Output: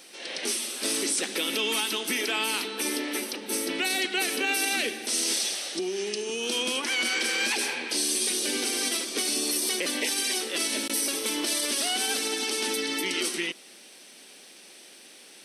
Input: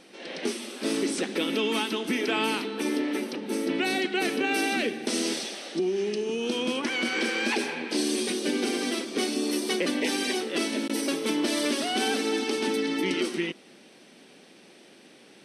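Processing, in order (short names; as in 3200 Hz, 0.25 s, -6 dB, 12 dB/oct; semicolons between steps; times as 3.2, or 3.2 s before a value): RIAA curve recording; limiter -17 dBFS, peak gain reduction 8 dB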